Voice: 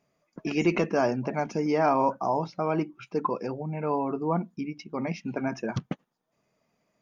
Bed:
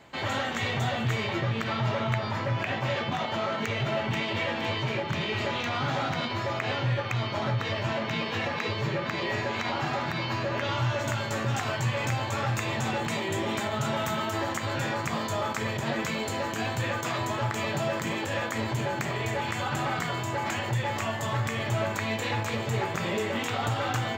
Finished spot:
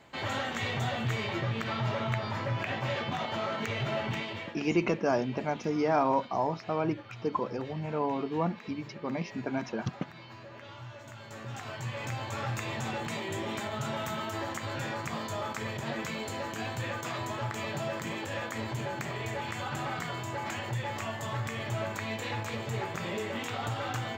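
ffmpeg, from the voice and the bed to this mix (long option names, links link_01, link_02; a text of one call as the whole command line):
ffmpeg -i stem1.wav -i stem2.wav -filter_complex "[0:a]adelay=4100,volume=-3dB[link_01];[1:a]volume=9dB,afade=type=out:start_time=4.07:duration=0.49:silence=0.188365,afade=type=in:start_time=11.12:duration=1.33:silence=0.237137[link_02];[link_01][link_02]amix=inputs=2:normalize=0" out.wav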